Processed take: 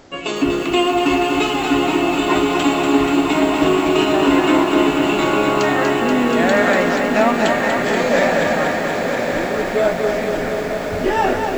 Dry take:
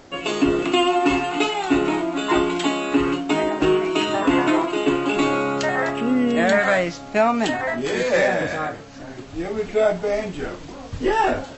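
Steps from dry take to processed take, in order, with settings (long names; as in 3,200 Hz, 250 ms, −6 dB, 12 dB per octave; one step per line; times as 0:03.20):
on a send: feedback delay with all-pass diffusion 1,061 ms, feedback 59%, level −6 dB
on the sum: feedback echo at a low word length 240 ms, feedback 80%, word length 7 bits, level −5.5 dB
level +1 dB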